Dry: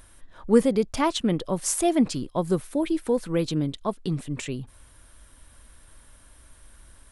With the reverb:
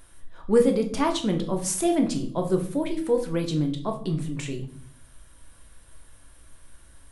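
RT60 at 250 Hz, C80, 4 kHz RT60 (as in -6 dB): 0.85 s, 15.0 dB, 0.40 s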